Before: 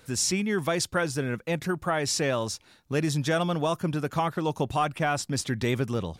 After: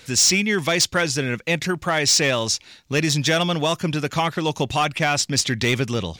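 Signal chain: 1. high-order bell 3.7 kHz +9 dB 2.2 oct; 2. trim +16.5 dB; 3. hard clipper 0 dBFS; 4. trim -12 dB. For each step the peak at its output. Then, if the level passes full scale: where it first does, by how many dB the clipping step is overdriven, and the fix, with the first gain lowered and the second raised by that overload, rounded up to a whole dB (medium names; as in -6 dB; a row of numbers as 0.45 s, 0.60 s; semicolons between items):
-7.5 dBFS, +9.0 dBFS, 0.0 dBFS, -12.0 dBFS; step 2, 9.0 dB; step 2 +7.5 dB, step 4 -3 dB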